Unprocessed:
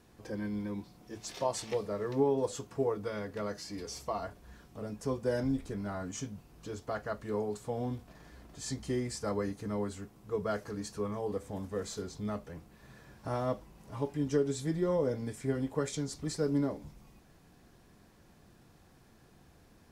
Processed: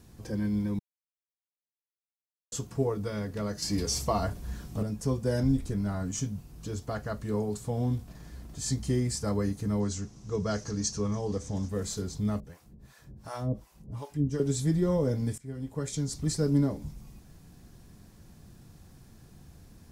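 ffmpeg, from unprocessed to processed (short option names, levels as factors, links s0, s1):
-filter_complex "[0:a]asettb=1/sr,asplit=3[s0][s1][s2];[s0]atrim=end=3.624[s3];[s1]atrim=start=3.62:end=4.83,asetpts=PTS-STARTPTS,afade=t=in:d=0.004:c=qsin,afade=t=out:st=1.206:d=0.004:c=qsin,acontrast=61[s4];[s2]atrim=start=4.826[s5];[s3][s4]acrossfade=d=0.004:c1=hsin:c2=qsin[s6];[s6][s5]acrossfade=d=0.004:c1=qsin:c2=hsin,asettb=1/sr,asplit=3[s7][s8][s9];[s7]atrim=end=9.804[s10];[s8]atrim=start=9.8:end=11.69,asetpts=PTS-STARTPTS,afade=t=in:d=0.004:c=qsin,afade=t=out:st=1.886:d=0.004:c=qsin,lowpass=f=6100:t=q:w=3.9[s11];[s9]atrim=start=11.686[s12];[s10][s11]acrossfade=d=0.004:c1=hsin:c2=qsin[s13];[s13][s12]acrossfade=d=0.004:c1=qsin:c2=hsin,asettb=1/sr,asplit=3[s14][s15][s16];[s14]atrim=end=12.404[s17];[s15]atrim=start=12.4:end=14.4,asetpts=PTS-STARTPTS,afade=t=in:d=0.004:c=qsin,afade=t=out:st=1.996:d=0.004:c=qsin,acrossover=split=560[s18][s19];[s18]aeval=exprs='val(0)*(1-1/2+1/2*cos(2*PI*2.7*n/s))':c=same[s20];[s19]aeval=exprs='val(0)*(1-1/2-1/2*cos(2*PI*2.7*n/s))':c=same[s21];[s20][s21]amix=inputs=2:normalize=0[s22];[s16]atrim=start=14.396[s23];[s17][s22]acrossfade=d=0.004:c1=hsin:c2=qsin[s24];[s24][s23]acrossfade=d=0.004:c1=qsin:c2=hsin,asplit=4[s25][s26][s27][s28];[s25]atrim=end=0.79,asetpts=PTS-STARTPTS,afade=t=out:st=0.786:d=0.004:c=hsin[s29];[s26]atrim=start=0.79:end=2.52,asetpts=PTS-STARTPTS,volume=0[s30];[s27]atrim=start=2.52:end=15.38,asetpts=PTS-STARTPTS,afade=t=in:d=0.004:c=hsin,afade=t=out:st=12.856:d=0.004:c=hsin:silence=0.1[s31];[s28]atrim=start=15.38,asetpts=PTS-STARTPTS,afade=t=in:d=0.86:silence=0.1[s32];[s29][s30][s31][s32]concat=n=4:v=0:a=1,bass=f=250:g=11,treble=f=4000:g=8"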